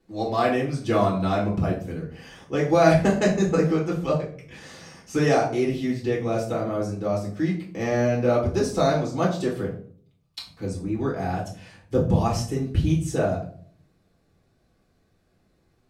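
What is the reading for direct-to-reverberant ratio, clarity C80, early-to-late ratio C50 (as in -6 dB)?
-4.0 dB, 12.0 dB, 7.5 dB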